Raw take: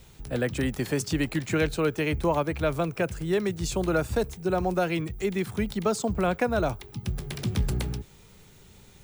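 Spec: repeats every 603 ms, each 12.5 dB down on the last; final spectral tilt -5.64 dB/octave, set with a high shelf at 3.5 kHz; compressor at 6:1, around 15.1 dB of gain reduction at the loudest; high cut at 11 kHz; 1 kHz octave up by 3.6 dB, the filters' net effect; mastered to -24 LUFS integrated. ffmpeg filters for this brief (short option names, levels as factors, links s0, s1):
-af "lowpass=11000,equalizer=f=1000:t=o:g=5.5,highshelf=f=3500:g=-3.5,acompressor=threshold=0.0158:ratio=6,aecho=1:1:603|1206|1809:0.237|0.0569|0.0137,volume=6.31"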